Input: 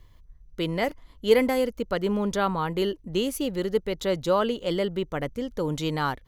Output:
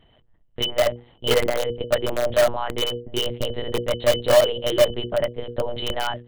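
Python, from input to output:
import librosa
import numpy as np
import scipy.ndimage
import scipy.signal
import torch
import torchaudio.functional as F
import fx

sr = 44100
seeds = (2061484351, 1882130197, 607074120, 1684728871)

p1 = fx.notch_comb(x, sr, f0_hz=1200.0)
p2 = fx.small_body(p1, sr, hz=(600.0, 3000.0), ring_ms=85, db=16)
p3 = fx.lpc_monotone(p2, sr, seeds[0], pitch_hz=120.0, order=8)
p4 = (np.mod(10.0 ** (13.5 / 20.0) * p3 + 1.0, 2.0) - 1.0) / 10.0 ** (13.5 / 20.0)
p5 = p3 + (p4 * librosa.db_to_amplitude(-7.0))
y = fx.hum_notches(p5, sr, base_hz=60, count=8)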